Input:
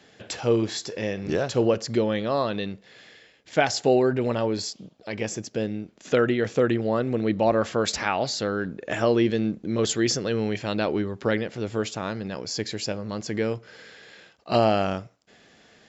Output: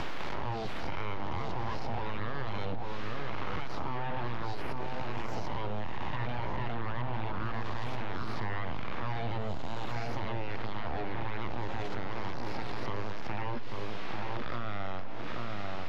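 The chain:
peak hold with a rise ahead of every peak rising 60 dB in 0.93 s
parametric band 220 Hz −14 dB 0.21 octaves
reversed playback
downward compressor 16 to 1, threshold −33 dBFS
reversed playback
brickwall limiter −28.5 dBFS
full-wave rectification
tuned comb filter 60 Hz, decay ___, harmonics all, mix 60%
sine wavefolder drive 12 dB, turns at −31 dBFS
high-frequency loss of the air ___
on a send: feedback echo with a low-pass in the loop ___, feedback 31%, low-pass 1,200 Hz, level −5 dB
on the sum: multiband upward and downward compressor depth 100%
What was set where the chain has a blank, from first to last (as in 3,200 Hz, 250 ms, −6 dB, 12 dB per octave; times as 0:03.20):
0.85 s, 270 metres, 841 ms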